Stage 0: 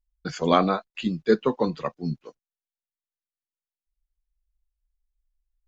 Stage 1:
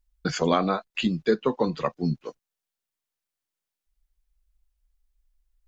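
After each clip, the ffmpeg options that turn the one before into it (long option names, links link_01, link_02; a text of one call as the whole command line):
ffmpeg -i in.wav -af "acompressor=threshold=-30dB:ratio=2.5,volume=7dB" out.wav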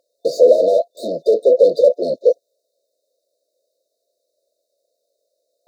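ffmpeg -i in.wav -filter_complex "[0:a]asplit=2[link_01][link_02];[link_02]highpass=frequency=720:poles=1,volume=37dB,asoftclip=type=tanh:threshold=-7.5dB[link_03];[link_01][link_03]amix=inputs=2:normalize=0,lowpass=frequency=1000:poles=1,volume=-6dB,afftfilt=real='re*(1-between(b*sr/4096,690,3600))':imag='im*(1-between(b*sr/4096,690,3600))':win_size=4096:overlap=0.75,highpass=frequency=530:width_type=q:width=6.3,volume=-3dB" out.wav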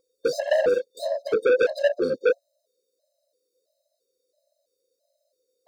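ffmpeg -i in.wav -af "asoftclip=type=tanh:threshold=-15.5dB,afftfilt=real='re*gt(sin(2*PI*1.5*pts/sr)*(1-2*mod(floor(b*sr/1024/540),2)),0)':imag='im*gt(sin(2*PI*1.5*pts/sr)*(1-2*mod(floor(b*sr/1024/540),2)),0)':win_size=1024:overlap=0.75,volume=1dB" out.wav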